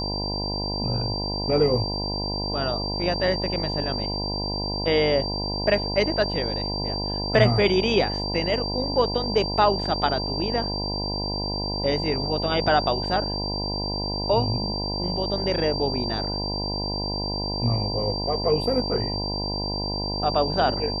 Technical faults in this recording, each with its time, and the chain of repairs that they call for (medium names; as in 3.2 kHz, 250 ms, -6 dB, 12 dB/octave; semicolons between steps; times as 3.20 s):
buzz 50 Hz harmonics 20 -30 dBFS
whine 4.7 kHz -29 dBFS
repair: de-hum 50 Hz, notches 20; band-stop 4.7 kHz, Q 30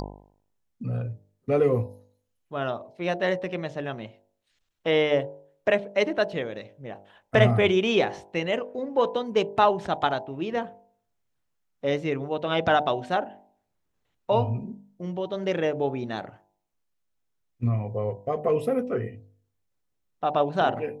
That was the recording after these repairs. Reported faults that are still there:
nothing left